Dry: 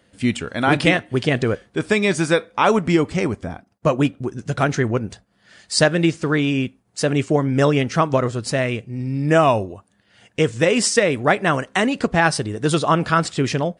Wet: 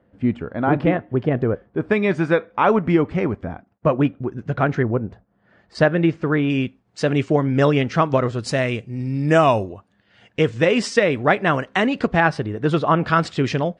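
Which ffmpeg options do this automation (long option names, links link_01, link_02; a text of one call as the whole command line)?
ffmpeg -i in.wav -af "asetnsamples=nb_out_samples=441:pad=0,asendcmd='1.91 lowpass f 2000;4.83 lowpass f 1100;5.75 lowpass f 2000;6.5 lowpass f 4100;8.39 lowpass f 7200;9.69 lowpass f 3800;12.2 lowpass f 2400;13.07 lowpass f 4300',lowpass=1100" out.wav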